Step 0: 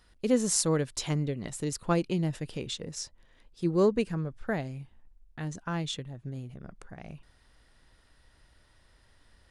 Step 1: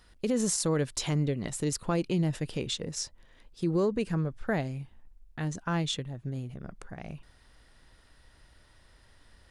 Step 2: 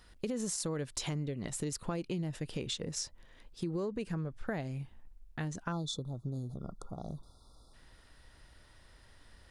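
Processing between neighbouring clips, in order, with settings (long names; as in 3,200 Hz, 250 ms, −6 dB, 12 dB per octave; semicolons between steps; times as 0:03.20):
brickwall limiter −22.5 dBFS, peak gain reduction 10.5 dB; level +3 dB
time-frequency box erased 0:05.72–0:07.74, 1,400–3,400 Hz; downward compressor 4 to 1, threshold −34 dBFS, peak gain reduction 9.5 dB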